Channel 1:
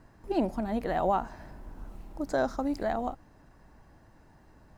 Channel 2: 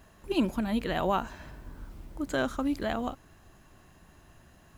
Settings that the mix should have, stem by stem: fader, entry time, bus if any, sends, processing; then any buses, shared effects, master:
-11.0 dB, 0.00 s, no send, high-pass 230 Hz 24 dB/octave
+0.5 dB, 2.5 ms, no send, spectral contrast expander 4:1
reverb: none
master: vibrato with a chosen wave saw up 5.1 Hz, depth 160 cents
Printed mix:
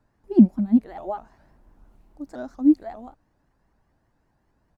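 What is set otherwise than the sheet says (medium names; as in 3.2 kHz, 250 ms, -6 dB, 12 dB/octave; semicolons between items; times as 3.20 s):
stem 1: missing high-pass 230 Hz 24 dB/octave; stem 2 +0.5 dB -> +11.5 dB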